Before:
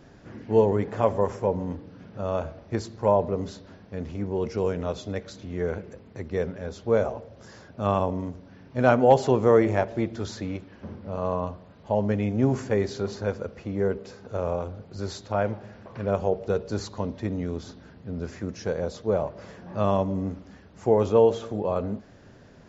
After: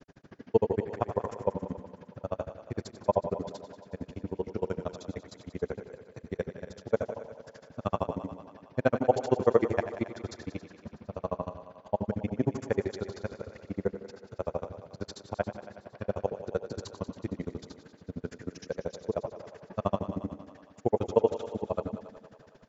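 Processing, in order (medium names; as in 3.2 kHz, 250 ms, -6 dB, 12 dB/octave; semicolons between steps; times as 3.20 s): peaking EQ 62 Hz -14 dB 0.42 oct; granulator 42 ms, grains 13 per s, spray 18 ms, pitch spread up and down by 0 st; thinning echo 92 ms, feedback 76%, high-pass 180 Hz, level -12 dB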